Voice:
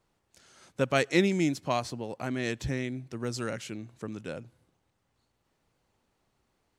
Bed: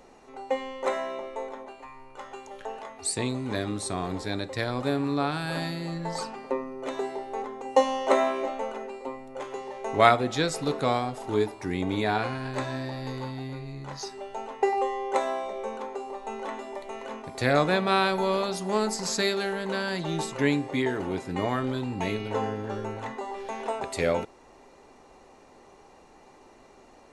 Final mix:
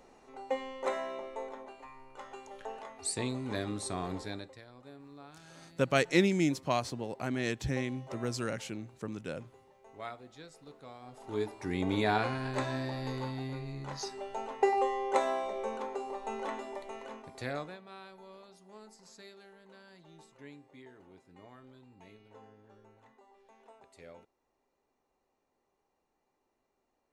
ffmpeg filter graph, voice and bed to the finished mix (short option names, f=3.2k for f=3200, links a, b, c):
-filter_complex "[0:a]adelay=5000,volume=-1.5dB[a];[1:a]volume=16.5dB,afade=t=out:st=4.13:d=0.48:silence=0.112202,afade=t=in:st=10.99:d=0.92:silence=0.0794328,afade=t=out:st=16.48:d=1.3:silence=0.0630957[b];[a][b]amix=inputs=2:normalize=0"